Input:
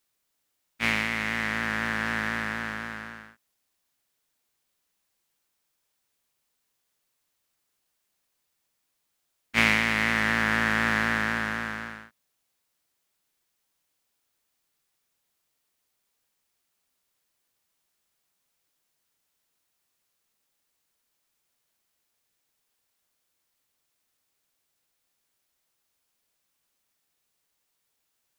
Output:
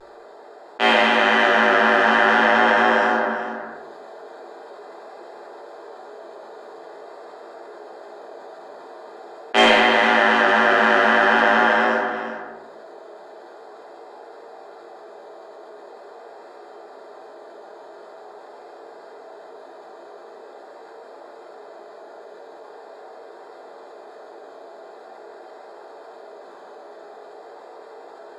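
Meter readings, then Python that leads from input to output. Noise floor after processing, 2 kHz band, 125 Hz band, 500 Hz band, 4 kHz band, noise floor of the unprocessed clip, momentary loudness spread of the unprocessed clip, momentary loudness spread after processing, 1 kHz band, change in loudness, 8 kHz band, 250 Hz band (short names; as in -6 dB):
-43 dBFS, +8.5 dB, n/a, +20.5 dB, +11.0 dB, -78 dBFS, 14 LU, 11 LU, +16.0 dB, +9.0 dB, +2.0 dB, +8.0 dB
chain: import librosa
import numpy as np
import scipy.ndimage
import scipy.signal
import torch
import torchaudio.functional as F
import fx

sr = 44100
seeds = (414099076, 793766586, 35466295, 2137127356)

y = fx.wiener(x, sr, points=15)
y = scipy.signal.sosfilt(scipy.signal.butter(4, 300.0, 'highpass', fs=sr, output='sos'), y)
y = fx.peak_eq(y, sr, hz=680.0, db=6.0, octaves=1.6)
y = fx.notch(y, sr, hz=2200.0, q=5.8)
y = fx.rider(y, sr, range_db=10, speed_s=0.5)
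y = fx.small_body(y, sr, hz=(430.0, 660.0, 3100.0), ring_ms=35, db=11)
y = fx.fold_sine(y, sr, drive_db=5, ceiling_db=-1.0)
y = fx.vibrato(y, sr, rate_hz=0.44, depth_cents=25.0)
y = fx.air_absorb(y, sr, metres=73.0)
y = y + 10.0 ** (-21.0 / 20.0) * np.pad(y, (int(366 * sr / 1000.0), 0))[:len(y)]
y = fx.room_shoebox(y, sr, seeds[0], volume_m3=100.0, walls='mixed', distance_m=1.2)
y = fx.env_flatten(y, sr, amount_pct=50)
y = F.gain(torch.from_numpy(y), -7.5).numpy()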